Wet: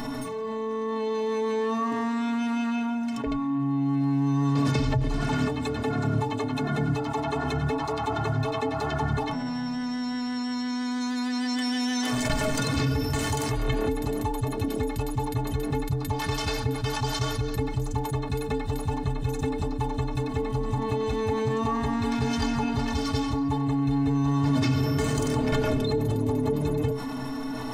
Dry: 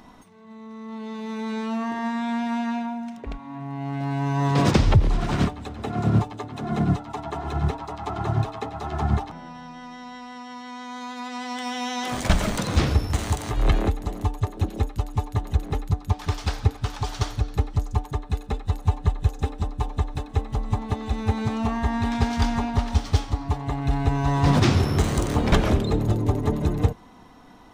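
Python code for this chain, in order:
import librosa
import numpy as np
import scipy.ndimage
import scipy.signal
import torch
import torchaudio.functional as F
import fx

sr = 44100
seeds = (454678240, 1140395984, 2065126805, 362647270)

y = fx.peak_eq(x, sr, hz=250.0, db=8.5, octaves=0.22)
y = fx.stiff_resonator(y, sr, f0_hz=130.0, decay_s=0.23, stiffness=0.03)
y = fx.env_flatten(y, sr, amount_pct=70)
y = y * 10.0 ** (-1.0 / 20.0)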